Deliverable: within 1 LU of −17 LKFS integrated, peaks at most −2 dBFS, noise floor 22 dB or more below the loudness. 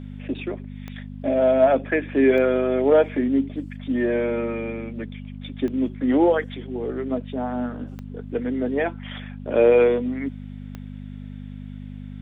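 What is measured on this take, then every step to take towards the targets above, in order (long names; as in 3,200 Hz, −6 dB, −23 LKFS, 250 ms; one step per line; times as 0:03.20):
number of clicks 5; mains hum 50 Hz; hum harmonics up to 250 Hz; level of the hum −33 dBFS; integrated loudness −22.5 LKFS; sample peak −6.5 dBFS; target loudness −17.0 LKFS
→ click removal
hum removal 50 Hz, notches 5
level +5.5 dB
brickwall limiter −2 dBFS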